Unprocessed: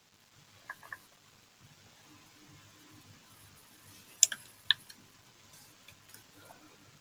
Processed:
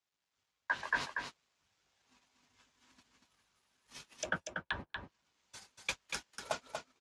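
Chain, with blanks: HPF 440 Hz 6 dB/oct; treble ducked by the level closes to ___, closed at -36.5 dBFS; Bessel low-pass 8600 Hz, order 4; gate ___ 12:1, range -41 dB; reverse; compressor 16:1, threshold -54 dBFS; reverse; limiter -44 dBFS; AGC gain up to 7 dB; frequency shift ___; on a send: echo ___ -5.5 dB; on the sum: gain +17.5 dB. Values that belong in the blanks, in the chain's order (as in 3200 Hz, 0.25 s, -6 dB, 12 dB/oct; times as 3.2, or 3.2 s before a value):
730 Hz, -54 dBFS, -49 Hz, 0.238 s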